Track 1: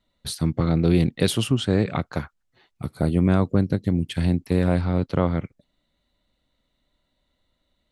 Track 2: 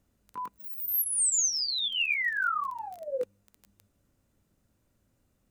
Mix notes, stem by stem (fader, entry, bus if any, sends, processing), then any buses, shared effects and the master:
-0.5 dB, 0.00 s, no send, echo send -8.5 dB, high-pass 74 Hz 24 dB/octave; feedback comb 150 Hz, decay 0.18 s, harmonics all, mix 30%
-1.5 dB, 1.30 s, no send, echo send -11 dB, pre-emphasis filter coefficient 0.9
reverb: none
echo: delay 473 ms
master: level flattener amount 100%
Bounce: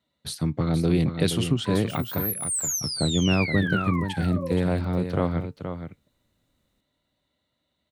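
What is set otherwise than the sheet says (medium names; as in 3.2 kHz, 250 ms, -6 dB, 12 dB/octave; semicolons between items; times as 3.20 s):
stem 2: missing pre-emphasis filter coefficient 0.9; master: missing level flattener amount 100%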